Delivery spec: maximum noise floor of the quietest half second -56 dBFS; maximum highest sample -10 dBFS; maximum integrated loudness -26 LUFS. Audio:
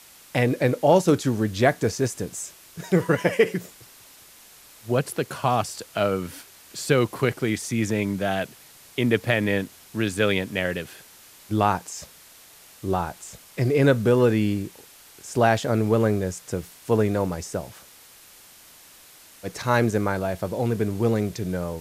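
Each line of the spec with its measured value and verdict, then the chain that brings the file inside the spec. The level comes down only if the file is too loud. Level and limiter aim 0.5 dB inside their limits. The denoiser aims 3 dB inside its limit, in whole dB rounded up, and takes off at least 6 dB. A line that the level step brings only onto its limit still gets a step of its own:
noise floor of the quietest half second -50 dBFS: fail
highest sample -6.0 dBFS: fail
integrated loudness -24.0 LUFS: fail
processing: noise reduction 7 dB, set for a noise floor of -50 dBFS; trim -2.5 dB; peak limiter -10.5 dBFS

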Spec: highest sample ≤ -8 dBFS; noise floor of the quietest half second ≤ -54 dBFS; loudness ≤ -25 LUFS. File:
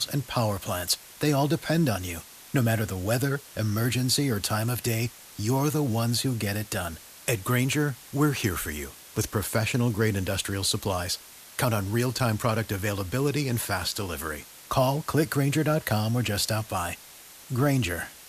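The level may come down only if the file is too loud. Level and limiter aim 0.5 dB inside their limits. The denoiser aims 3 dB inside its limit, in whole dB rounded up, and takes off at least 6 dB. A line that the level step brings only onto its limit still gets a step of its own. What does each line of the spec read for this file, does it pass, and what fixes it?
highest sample -11.0 dBFS: pass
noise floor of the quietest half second -48 dBFS: fail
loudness -27.0 LUFS: pass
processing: noise reduction 9 dB, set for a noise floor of -48 dBFS

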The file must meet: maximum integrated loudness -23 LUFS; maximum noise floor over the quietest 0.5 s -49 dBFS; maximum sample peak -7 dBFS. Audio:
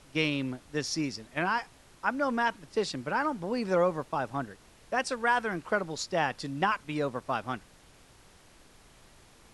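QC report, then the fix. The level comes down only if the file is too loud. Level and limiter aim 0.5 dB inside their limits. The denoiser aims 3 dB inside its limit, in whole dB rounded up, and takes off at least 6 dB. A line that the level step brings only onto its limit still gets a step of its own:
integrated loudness -31.0 LUFS: pass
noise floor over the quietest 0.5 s -57 dBFS: pass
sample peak -13.0 dBFS: pass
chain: none needed

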